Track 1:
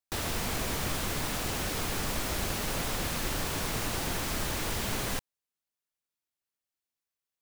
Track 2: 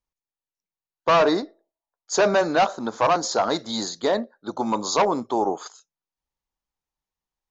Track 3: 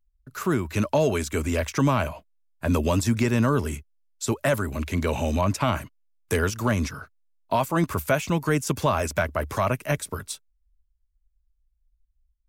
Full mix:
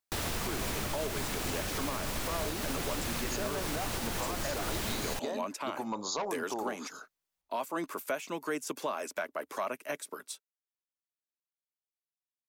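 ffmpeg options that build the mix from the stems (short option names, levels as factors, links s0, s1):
-filter_complex "[0:a]volume=1.19[s0];[1:a]acompressor=threshold=0.0355:ratio=4,adelay=1200,volume=0.668[s1];[2:a]highpass=f=270:w=0.5412,highpass=f=270:w=1.3066,volume=0.398[s2];[s0][s1][s2]amix=inputs=3:normalize=0,alimiter=limit=0.0668:level=0:latency=1:release=292"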